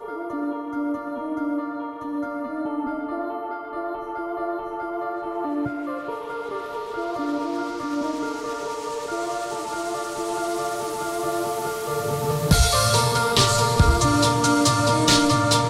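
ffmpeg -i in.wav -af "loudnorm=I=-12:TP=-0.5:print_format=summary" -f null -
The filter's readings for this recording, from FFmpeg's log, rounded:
Input Integrated:    -22.3 LUFS
Input True Peak:      -6.9 dBTP
Input LRA:            10.6 LU
Input Threshold:     -32.3 LUFS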